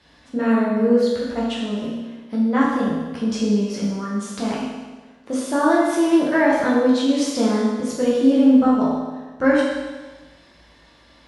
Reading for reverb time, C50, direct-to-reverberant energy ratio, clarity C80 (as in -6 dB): 1.3 s, 0.0 dB, -6.5 dB, 2.5 dB